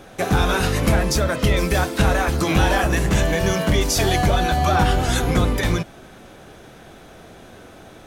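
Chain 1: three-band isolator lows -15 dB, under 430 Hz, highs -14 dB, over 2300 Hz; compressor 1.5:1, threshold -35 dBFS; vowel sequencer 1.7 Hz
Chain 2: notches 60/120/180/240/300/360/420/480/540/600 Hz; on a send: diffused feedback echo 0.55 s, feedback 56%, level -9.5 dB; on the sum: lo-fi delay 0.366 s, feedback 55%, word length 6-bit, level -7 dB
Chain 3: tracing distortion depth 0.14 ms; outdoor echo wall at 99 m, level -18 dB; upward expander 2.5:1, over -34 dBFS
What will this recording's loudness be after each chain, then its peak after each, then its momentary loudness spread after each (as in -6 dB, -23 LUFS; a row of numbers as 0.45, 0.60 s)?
-39.0, -19.0, -25.0 LUFS; -20.5, -4.5, -8.5 dBFS; 22, 15, 6 LU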